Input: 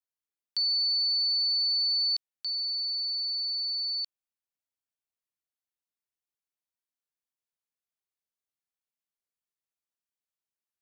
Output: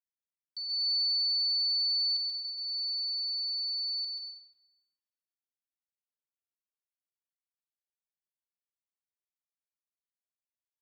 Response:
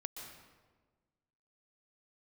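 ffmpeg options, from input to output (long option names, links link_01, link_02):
-filter_complex "[0:a]aecho=1:1:133|266|399:0.422|0.105|0.0264,agate=range=-14dB:threshold=-42dB:ratio=16:detection=peak[link_01];[1:a]atrim=start_sample=2205[link_02];[link_01][link_02]afir=irnorm=-1:irlink=0,volume=-6.5dB"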